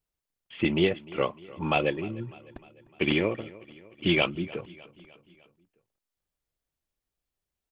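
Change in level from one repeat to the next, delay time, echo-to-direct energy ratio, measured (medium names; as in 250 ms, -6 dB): -5.0 dB, 302 ms, -19.0 dB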